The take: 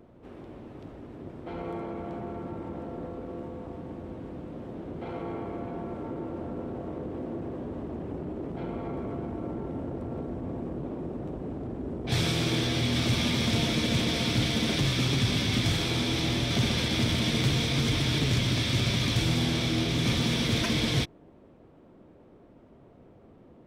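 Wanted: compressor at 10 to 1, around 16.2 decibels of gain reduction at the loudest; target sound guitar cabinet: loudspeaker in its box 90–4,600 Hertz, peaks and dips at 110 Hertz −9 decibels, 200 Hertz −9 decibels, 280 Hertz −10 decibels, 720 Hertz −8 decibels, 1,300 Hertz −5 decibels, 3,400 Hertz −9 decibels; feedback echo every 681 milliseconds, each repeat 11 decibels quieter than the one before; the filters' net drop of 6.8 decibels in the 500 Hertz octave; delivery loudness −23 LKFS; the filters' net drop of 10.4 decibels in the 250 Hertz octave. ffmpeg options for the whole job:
ffmpeg -i in.wav -af "equalizer=frequency=250:width_type=o:gain=-4,equalizer=frequency=500:width_type=o:gain=-4,acompressor=threshold=-40dB:ratio=10,highpass=90,equalizer=frequency=110:width_type=q:width=4:gain=-9,equalizer=frequency=200:width_type=q:width=4:gain=-9,equalizer=frequency=280:width_type=q:width=4:gain=-10,equalizer=frequency=720:width_type=q:width=4:gain=-8,equalizer=frequency=1300:width_type=q:width=4:gain=-5,equalizer=frequency=3400:width_type=q:width=4:gain=-9,lowpass=frequency=4600:width=0.5412,lowpass=frequency=4600:width=1.3066,aecho=1:1:681|1362|2043:0.282|0.0789|0.0221,volume=25.5dB" out.wav

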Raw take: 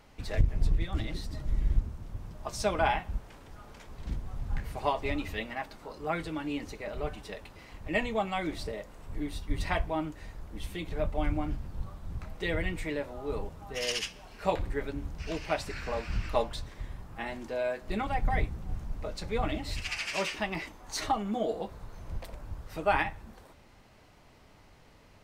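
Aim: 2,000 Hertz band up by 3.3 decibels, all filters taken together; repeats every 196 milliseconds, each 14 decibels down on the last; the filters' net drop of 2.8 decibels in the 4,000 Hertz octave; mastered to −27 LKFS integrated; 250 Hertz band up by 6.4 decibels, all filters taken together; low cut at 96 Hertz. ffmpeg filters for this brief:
ffmpeg -i in.wav -af "highpass=96,equalizer=frequency=250:width_type=o:gain=8.5,equalizer=frequency=2000:width_type=o:gain=5.5,equalizer=frequency=4000:width_type=o:gain=-6.5,aecho=1:1:196|392:0.2|0.0399,volume=5dB" out.wav

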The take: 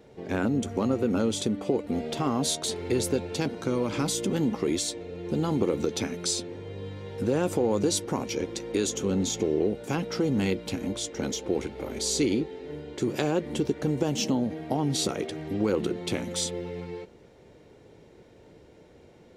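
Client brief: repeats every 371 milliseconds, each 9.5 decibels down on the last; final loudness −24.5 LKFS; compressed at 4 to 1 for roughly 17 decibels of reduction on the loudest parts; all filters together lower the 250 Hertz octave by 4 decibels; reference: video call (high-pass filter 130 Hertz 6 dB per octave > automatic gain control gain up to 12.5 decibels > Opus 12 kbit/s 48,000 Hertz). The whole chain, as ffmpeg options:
ffmpeg -i in.wav -af "equalizer=frequency=250:width_type=o:gain=-4,acompressor=threshold=-44dB:ratio=4,highpass=frequency=130:poles=1,aecho=1:1:371|742|1113|1484:0.335|0.111|0.0365|0.012,dynaudnorm=maxgain=12.5dB,volume=14.5dB" -ar 48000 -c:a libopus -b:a 12k out.opus

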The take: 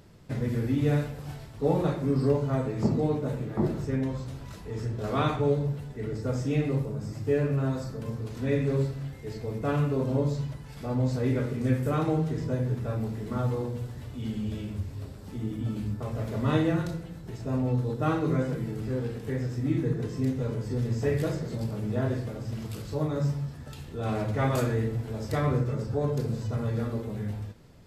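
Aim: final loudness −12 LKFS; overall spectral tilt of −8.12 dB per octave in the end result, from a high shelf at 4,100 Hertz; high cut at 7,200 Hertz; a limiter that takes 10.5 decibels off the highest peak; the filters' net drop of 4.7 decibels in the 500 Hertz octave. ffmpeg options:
ffmpeg -i in.wav -af "lowpass=7200,equalizer=frequency=500:width_type=o:gain=-5.5,highshelf=frequency=4100:gain=-8.5,volume=20.5dB,alimiter=limit=-1.5dB:level=0:latency=1" out.wav

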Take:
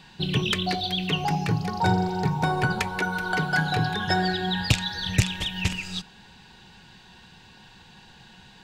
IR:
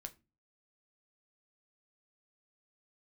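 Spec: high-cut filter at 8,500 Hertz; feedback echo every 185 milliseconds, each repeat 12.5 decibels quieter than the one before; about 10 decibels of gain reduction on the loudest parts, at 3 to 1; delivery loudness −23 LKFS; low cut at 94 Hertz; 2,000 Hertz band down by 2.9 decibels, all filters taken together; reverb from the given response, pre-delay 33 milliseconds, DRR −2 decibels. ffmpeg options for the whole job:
-filter_complex "[0:a]highpass=94,lowpass=8500,equalizer=frequency=2000:width_type=o:gain=-4.5,acompressor=threshold=-30dB:ratio=3,aecho=1:1:185|370|555:0.237|0.0569|0.0137,asplit=2[link_01][link_02];[1:a]atrim=start_sample=2205,adelay=33[link_03];[link_02][link_03]afir=irnorm=-1:irlink=0,volume=7dB[link_04];[link_01][link_04]amix=inputs=2:normalize=0,volume=4.5dB"

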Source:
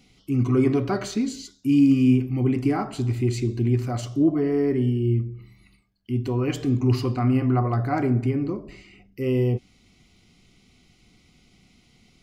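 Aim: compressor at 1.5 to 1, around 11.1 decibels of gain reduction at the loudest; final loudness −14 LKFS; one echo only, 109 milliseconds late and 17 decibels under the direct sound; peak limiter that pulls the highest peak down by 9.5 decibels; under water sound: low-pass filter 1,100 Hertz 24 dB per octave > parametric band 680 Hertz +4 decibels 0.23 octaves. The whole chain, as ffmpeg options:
ffmpeg -i in.wav -af "acompressor=threshold=-46dB:ratio=1.5,alimiter=level_in=5.5dB:limit=-24dB:level=0:latency=1,volume=-5.5dB,lowpass=frequency=1100:width=0.5412,lowpass=frequency=1100:width=1.3066,equalizer=frequency=680:width_type=o:width=0.23:gain=4,aecho=1:1:109:0.141,volume=23.5dB" out.wav

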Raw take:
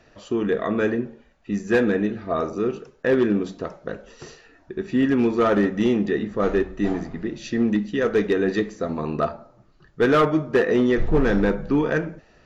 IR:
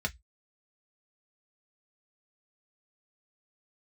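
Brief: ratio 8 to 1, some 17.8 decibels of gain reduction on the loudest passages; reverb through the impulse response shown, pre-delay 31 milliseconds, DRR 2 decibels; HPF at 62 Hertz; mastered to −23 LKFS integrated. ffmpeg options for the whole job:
-filter_complex "[0:a]highpass=62,acompressor=threshold=-34dB:ratio=8,asplit=2[link_01][link_02];[1:a]atrim=start_sample=2205,adelay=31[link_03];[link_02][link_03]afir=irnorm=-1:irlink=0,volume=-7dB[link_04];[link_01][link_04]amix=inputs=2:normalize=0,volume=12.5dB"

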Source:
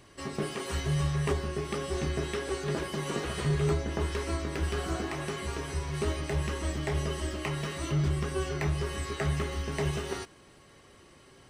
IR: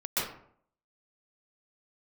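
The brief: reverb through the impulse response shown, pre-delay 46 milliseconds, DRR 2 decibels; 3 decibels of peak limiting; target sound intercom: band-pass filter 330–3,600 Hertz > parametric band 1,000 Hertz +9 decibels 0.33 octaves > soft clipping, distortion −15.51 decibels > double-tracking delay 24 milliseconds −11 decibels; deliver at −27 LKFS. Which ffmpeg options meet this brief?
-filter_complex "[0:a]alimiter=limit=-23.5dB:level=0:latency=1,asplit=2[link_01][link_02];[1:a]atrim=start_sample=2205,adelay=46[link_03];[link_02][link_03]afir=irnorm=-1:irlink=0,volume=-10.5dB[link_04];[link_01][link_04]amix=inputs=2:normalize=0,highpass=330,lowpass=3600,equalizer=frequency=1000:width_type=o:width=0.33:gain=9,asoftclip=threshold=-29.5dB,asplit=2[link_05][link_06];[link_06]adelay=24,volume=-11dB[link_07];[link_05][link_07]amix=inputs=2:normalize=0,volume=9dB"

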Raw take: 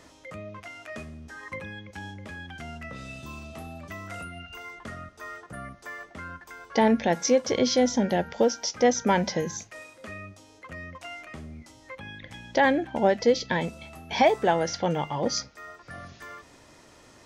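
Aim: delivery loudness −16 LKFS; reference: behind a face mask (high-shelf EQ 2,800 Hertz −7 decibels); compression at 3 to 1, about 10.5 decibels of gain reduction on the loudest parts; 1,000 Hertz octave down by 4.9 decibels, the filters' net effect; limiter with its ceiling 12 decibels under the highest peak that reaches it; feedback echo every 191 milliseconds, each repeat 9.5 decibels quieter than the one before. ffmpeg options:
ffmpeg -i in.wav -af "equalizer=frequency=1000:width_type=o:gain=-6,acompressor=threshold=-32dB:ratio=3,alimiter=level_in=7dB:limit=-24dB:level=0:latency=1,volume=-7dB,highshelf=frequency=2800:gain=-7,aecho=1:1:191|382|573|764:0.335|0.111|0.0365|0.012,volume=26dB" out.wav

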